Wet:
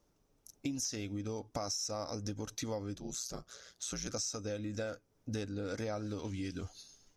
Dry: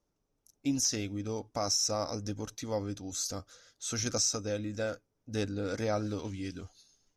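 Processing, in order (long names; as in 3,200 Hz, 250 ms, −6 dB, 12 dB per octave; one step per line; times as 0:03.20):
downward compressor 6 to 1, threshold −43 dBFS, peak gain reduction 16.5 dB
0:02.95–0:04.08: ring modulation 60 Hz
level +7 dB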